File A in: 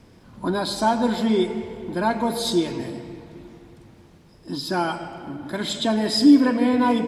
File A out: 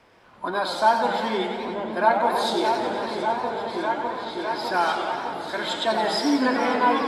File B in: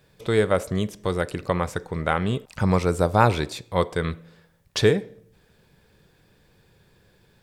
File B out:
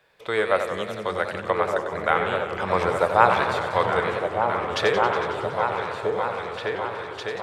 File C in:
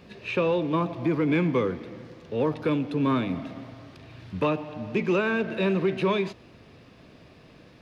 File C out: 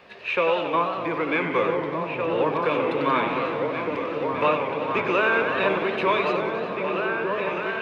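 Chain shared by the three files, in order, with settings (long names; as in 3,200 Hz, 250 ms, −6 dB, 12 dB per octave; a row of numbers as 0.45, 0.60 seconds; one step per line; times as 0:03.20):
three-way crossover with the lows and the highs turned down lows −19 dB, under 510 Hz, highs −12 dB, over 3,300 Hz
echo whose low-pass opens from repeat to repeat 605 ms, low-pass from 200 Hz, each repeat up 2 octaves, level 0 dB
feedback echo with a swinging delay time 92 ms, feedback 76%, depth 175 cents, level −8.5 dB
loudness normalisation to −24 LKFS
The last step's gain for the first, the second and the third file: +3.5, +3.5, +7.0 decibels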